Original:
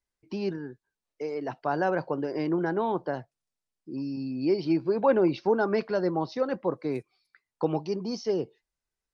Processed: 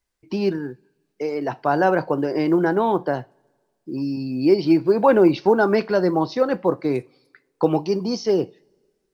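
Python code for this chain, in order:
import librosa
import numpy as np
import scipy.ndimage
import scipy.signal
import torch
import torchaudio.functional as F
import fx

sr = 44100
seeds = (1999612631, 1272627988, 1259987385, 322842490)

y = fx.rev_double_slope(x, sr, seeds[0], early_s=0.26, late_s=1.7, knee_db=-27, drr_db=13.5)
y = fx.quant_float(y, sr, bits=6)
y = y * librosa.db_to_amplitude(8.0)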